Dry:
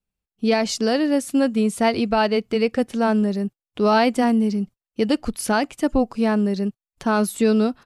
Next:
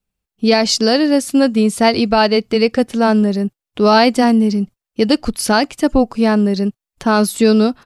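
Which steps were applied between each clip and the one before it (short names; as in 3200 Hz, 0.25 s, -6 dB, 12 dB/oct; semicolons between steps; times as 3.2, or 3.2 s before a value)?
dynamic EQ 4800 Hz, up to +7 dB, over -46 dBFS, Q 2.2; gain +6 dB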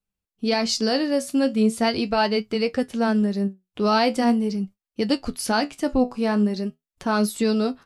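flange 0.41 Hz, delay 9.2 ms, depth 7.1 ms, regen +57%; gain -4 dB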